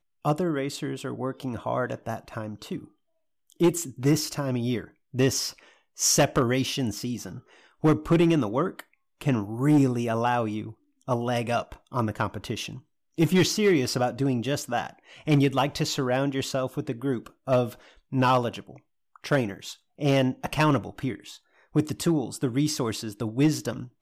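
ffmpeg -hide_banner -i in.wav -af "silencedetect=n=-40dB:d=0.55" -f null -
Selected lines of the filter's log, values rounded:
silence_start: 2.84
silence_end: 3.50 | silence_duration: 0.66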